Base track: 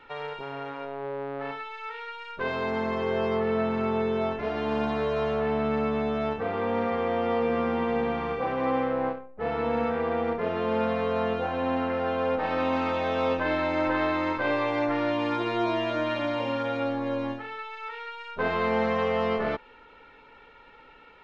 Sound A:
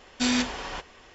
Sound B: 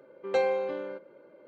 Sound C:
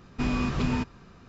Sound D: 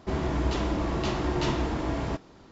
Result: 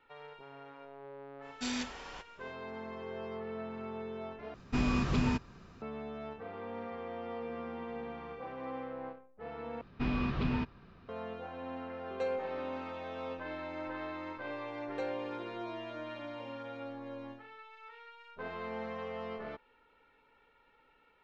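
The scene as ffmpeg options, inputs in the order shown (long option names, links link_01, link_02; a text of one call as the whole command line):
ffmpeg -i bed.wav -i cue0.wav -i cue1.wav -i cue2.wav -filter_complex "[3:a]asplit=2[link_01][link_02];[2:a]asplit=2[link_03][link_04];[0:a]volume=-15dB[link_05];[link_02]lowpass=frequency=4100:width=0.5412,lowpass=frequency=4100:width=1.3066[link_06];[link_05]asplit=3[link_07][link_08][link_09];[link_07]atrim=end=4.544[link_10];[link_01]atrim=end=1.28,asetpts=PTS-STARTPTS,volume=-3dB[link_11];[link_08]atrim=start=5.816:end=9.814[link_12];[link_06]atrim=end=1.28,asetpts=PTS-STARTPTS,volume=-5.5dB[link_13];[link_09]atrim=start=11.086[link_14];[1:a]atrim=end=1.14,asetpts=PTS-STARTPTS,volume=-12dB,afade=type=in:duration=0.05,afade=type=out:start_time=1.09:duration=0.05,adelay=1410[link_15];[link_03]atrim=end=1.47,asetpts=PTS-STARTPTS,volume=-11.5dB,afade=type=in:duration=0.004:curve=hsin,afade=type=out:start_time=1.466:duration=0.004:curve=hsin,adelay=523026S[link_16];[link_04]atrim=end=1.47,asetpts=PTS-STARTPTS,volume=-13dB,afade=type=in:duration=0.004:curve=hsin,afade=type=out:start_time=1.466:duration=0.004:curve=hsin,adelay=14640[link_17];[link_10][link_11]acrossfade=duration=0.004:curve1=hsin:curve2=hsin[link_18];[link_18][link_12]acrossfade=duration=0.004:curve1=hsin:curve2=hsin[link_19];[link_19][link_13]acrossfade=duration=0.004:curve1=hsin:curve2=hsin[link_20];[link_20][link_14]acrossfade=duration=0.004:curve1=hsin:curve2=hsin[link_21];[link_21][link_15][link_16][link_17]amix=inputs=4:normalize=0" out.wav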